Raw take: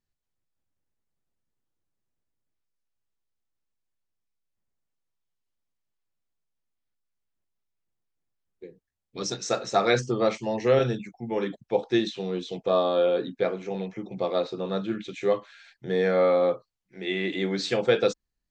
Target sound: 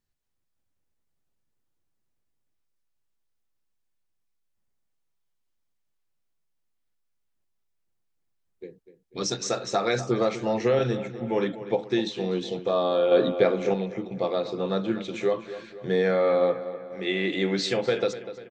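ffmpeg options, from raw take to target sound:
ffmpeg -i in.wav -filter_complex "[0:a]alimiter=limit=-16.5dB:level=0:latency=1:release=218,asplit=2[link_01][link_02];[link_02]adelay=246,lowpass=frequency=3700:poles=1,volume=-13dB,asplit=2[link_03][link_04];[link_04]adelay=246,lowpass=frequency=3700:poles=1,volume=0.54,asplit=2[link_05][link_06];[link_06]adelay=246,lowpass=frequency=3700:poles=1,volume=0.54,asplit=2[link_07][link_08];[link_08]adelay=246,lowpass=frequency=3700:poles=1,volume=0.54,asplit=2[link_09][link_10];[link_10]adelay=246,lowpass=frequency=3700:poles=1,volume=0.54,asplit=2[link_11][link_12];[link_12]adelay=246,lowpass=frequency=3700:poles=1,volume=0.54[link_13];[link_01][link_03][link_05][link_07][link_09][link_11][link_13]amix=inputs=7:normalize=0,asettb=1/sr,asplit=3[link_14][link_15][link_16];[link_14]atrim=end=13.114[link_17];[link_15]atrim=start=13.11:end=13.74,asetpts=PTS-STARTPTS,afade=type=in:duration=0.004:curve=qsin,afade=type=out:start_time=0.626:duration=0.004:curve=qsin,acontrast=31[link_18];[link_16]atrim=start=13.736[link_19];[link_17][link_18]acrossfade=duration=0.004:curve1=hsin:curve2=qsin[link_20];[link_20][link_19]acrossfade=duration=0.004:curve1=qsin:curve2=hsin,volume=2.5dB" out.wav

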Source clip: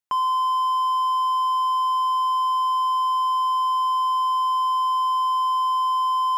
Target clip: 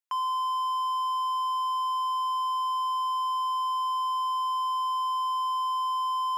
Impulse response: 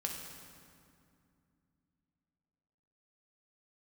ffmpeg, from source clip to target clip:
-af "highpass=1000,volume=-4dB"

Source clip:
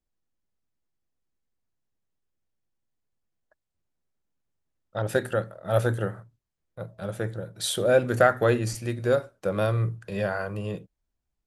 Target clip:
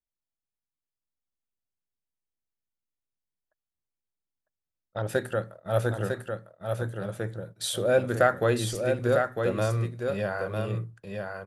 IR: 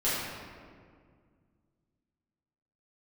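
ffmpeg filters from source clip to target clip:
-filter_complex "[0:a]agate=range=-11dB:threshold=-41dB:ratio=16:detection=peak,asplit=2[link_01][link_02];[link_02]aecho=0:1:952:0.562[link_03];[link_01][link_03]amix=inputs=2:normalize=0,volume=-2.5dB"

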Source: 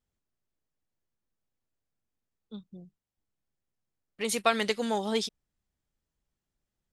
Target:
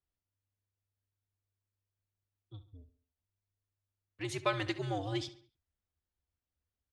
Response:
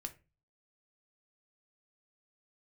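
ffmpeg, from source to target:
-filter_complex "[0:a]afreqshift=-99,asplit=2[link_01][link_02];[link_02]adelay=69,lowpass=frequency=4600:poles=1,volume=-14dB,asplit=2[link_03][link_04];[link_04]adelay=69,lowpass=frequency=4600:poles=1,volume=0.45,asplit=2[link_05][link_06];[link_06]adelay=69,lowpass=frequency=4600:poles=1,volume=0.45,asplit=2[link_07][link_08];[link_08]adelay=69,lowpass=frequency=4600:poles=1,volume=0.45[link_09];[link_01][link_03][link_05][link_07][link_09]amix=inputs=5:normalize=0,adynamicsmooth=sensitivity=0.5:basefreq=6100,volume=-6.5dB"

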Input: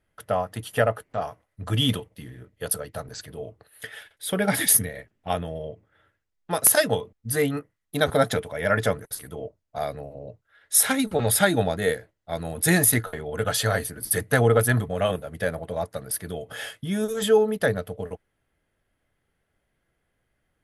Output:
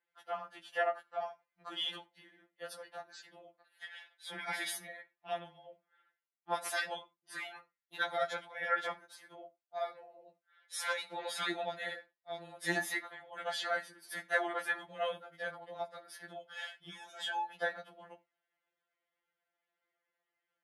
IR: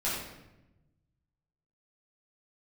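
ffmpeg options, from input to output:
-filter_complex "[0:a]highpass=590,lowpass=4400,asplit=2[link_01][link_02];[1:a]atrim=start_sample=2205,afade=type=out:start_time=0.39:duration=0.01,atrim=end_sample=17640,atrim=end_sample=4410[link_03];[link_02][link_03]afir=irnorm=-1:irlink=0,volume=-21dB[link_04];[link_01][link_04]amix=inputs=2:normalize=0,afftfilt=real='re*2.83*eq(mod(b,8),0)':imag='im*2.83*eq(mod(b,8),0)':win_size=2048:overlap=0.75,volume=-6.5dB"

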